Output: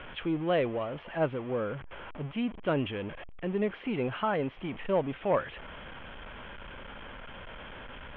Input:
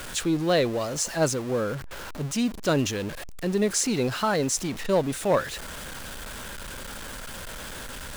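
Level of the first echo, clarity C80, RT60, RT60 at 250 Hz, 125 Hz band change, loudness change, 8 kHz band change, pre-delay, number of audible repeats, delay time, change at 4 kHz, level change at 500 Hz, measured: none, none, none, none, -6.5 dB, -5.0 dB, under -40 dB, none, none, none, -11.0 dB, -5.0 dB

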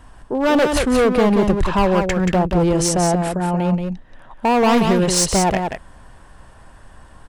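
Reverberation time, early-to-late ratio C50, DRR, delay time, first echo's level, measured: none, none, none, 0.18 s, -5.5 dB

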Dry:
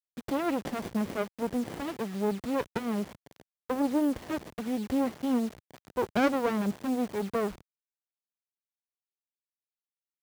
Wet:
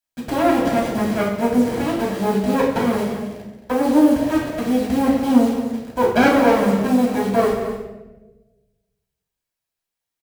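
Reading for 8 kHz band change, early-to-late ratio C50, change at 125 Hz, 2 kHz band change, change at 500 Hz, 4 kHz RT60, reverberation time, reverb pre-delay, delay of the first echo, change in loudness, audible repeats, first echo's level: +11.0 dB, 3.0 dB, +13.0 dB, +13.0 dB, +13.0 dB, 0.85 s, 1.1 s, 3 ms, 0.224 s, +12.5 dB, 1, -10.0 dB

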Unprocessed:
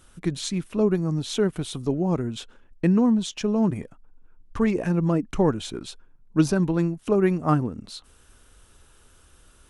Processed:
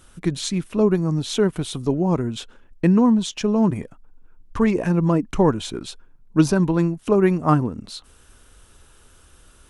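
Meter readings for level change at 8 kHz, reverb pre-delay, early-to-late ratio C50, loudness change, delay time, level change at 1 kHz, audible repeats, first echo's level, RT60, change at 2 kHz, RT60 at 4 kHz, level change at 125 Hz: +3.5 dB, none, none, +3.5 dB, none, +5.0 dB, none, none, none, +3.5 dB, none, +3.5 dB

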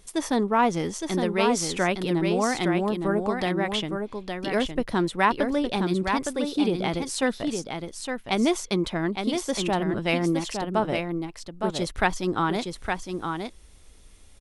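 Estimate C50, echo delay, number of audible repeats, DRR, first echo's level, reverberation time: none, 0.863 s, 1, none, -5.5 dB, none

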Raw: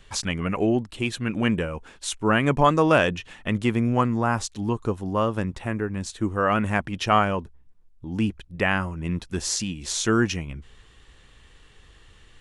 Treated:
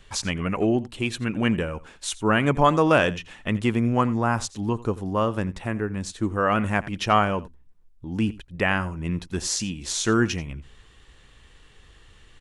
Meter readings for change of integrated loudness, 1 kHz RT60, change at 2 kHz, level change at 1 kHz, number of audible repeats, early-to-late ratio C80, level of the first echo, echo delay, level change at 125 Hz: 0.0 dB, none, 0.0 dB, 0.0 dB, 1, none, -19.0 dB, 86 ms, 0.0 dB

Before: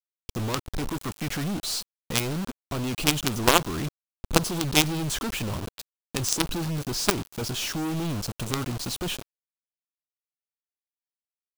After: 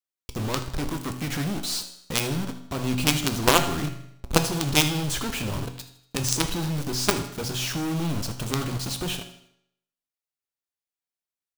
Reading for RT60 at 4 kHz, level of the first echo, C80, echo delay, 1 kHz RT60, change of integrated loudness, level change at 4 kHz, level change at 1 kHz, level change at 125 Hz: 0.70 s, -15.0 dB, 13.0 dB, 79 ms, 0.70 s, +1.0 dB, +1.0 dB, +1.0 dB, +2.0 dB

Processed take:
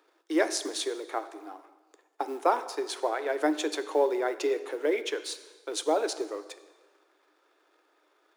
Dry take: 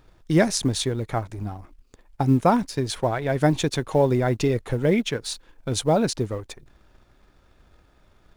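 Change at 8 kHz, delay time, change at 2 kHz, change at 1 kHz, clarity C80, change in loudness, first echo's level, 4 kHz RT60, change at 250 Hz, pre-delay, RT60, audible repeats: -5.5 dB, none, -3.5 dB, -4.0 dB, 15.0 dB, -6.5 dB, none, 1.2 s, -10.5 dB, 7 ms, 1.4 s, none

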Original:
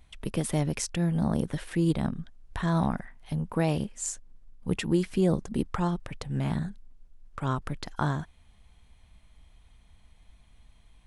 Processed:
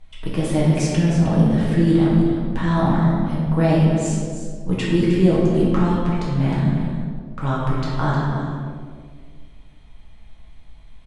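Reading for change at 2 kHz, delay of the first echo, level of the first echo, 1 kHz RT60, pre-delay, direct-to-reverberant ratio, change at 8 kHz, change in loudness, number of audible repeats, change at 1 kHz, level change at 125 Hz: +8.0 dB, 0.31 s, -9.5 dB, 1.6 s, 6 ms, -7.0 dB, +2.0 dB, +10.0 dB, 1, +8.5 dB, +11.5 dB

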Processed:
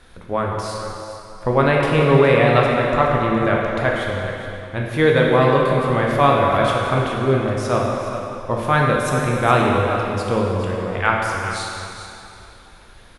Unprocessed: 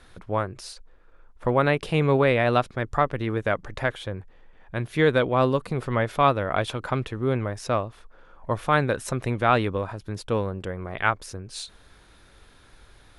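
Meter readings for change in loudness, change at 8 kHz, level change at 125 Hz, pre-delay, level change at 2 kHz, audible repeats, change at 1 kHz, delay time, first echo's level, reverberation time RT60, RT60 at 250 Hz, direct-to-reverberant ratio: +6.5 dB, +6.0 dB, +6.5 dB, 9 ms, +7.0 dB, 1, +7.0 dB, 0.416 s, -11.0 dB, 2.8 s, 2.6 s, -2.5 dB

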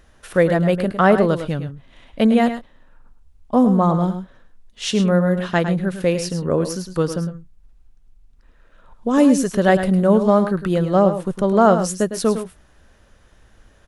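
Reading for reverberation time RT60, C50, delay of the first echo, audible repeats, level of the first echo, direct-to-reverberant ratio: none, none, 0.106 s, 1, -10.0 dB, none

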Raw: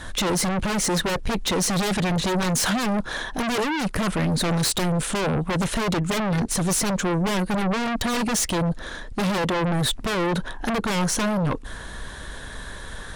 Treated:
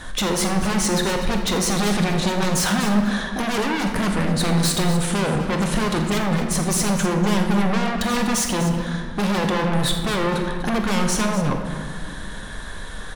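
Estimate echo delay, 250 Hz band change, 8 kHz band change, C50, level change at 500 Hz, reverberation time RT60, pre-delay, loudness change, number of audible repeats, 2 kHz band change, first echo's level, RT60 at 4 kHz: 45 ms, +3.5 dB, +1.0 dB, 4.5 dB, +2.0 dB, 2.0 s, 3 ms, +2.5 dB, 3, +2.0 dB, -12.5 dB, 1.1 s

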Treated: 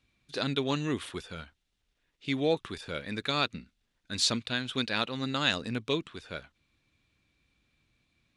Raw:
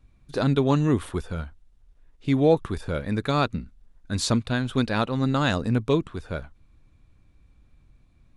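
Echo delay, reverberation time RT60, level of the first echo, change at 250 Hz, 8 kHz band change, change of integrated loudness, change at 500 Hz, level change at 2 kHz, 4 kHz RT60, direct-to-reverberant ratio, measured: none, none, none, -9.5 dB, -1.5 dB, -6.0 dB, -8.5 dB, -1.5 dB, none, none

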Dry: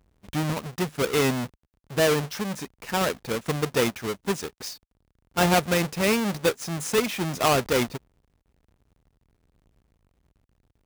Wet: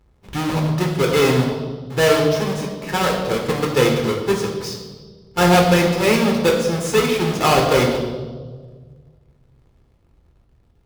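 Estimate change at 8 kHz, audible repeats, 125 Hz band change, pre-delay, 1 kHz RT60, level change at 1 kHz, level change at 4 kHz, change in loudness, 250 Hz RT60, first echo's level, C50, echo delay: +3.0 dB, none, +9.0 dB, 7 ms, 1.3 s, +7.5 dB, +6.5 dB, +7.5 dB, 1.9 s, none, 4.5 dB, none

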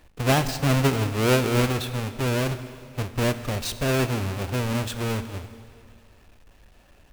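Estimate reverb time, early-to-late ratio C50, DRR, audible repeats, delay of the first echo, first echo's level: 2.3 s, 12.0 dB, 10.5 dB, none, none, none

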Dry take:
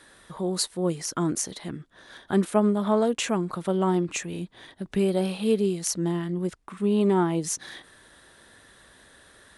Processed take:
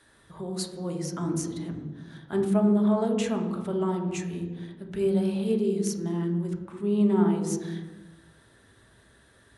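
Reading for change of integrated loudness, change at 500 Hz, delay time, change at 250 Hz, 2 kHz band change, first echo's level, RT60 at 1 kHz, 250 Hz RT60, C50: -1.5 dB, -2.0 dB, none, +0.5 dB, -6.5 dB, none, 1.1 s, 1.4 s, 6.0 dB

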